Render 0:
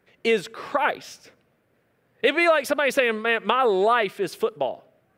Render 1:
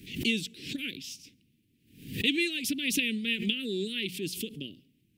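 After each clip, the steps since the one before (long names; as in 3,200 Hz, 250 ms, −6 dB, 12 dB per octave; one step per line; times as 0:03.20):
elliptic band-stop filter 290–2,800 Hz, stop band 60 dB
mains-hum notches 60/120/180 Hz
background raised ahead of every attack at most 100 dB per second
level +1 dB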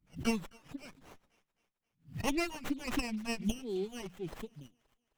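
spectral dynamics exaggerated over time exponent 2
delay with a high-pass on its return 263 ms, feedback 47%, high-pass 2,600 Hz, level −20.5 dB
windowed peak hold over 9 samples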